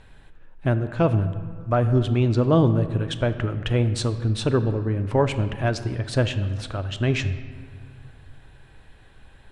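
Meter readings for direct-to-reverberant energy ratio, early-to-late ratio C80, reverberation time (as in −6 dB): 10.0 dB, 13.0 dB, 2.0 s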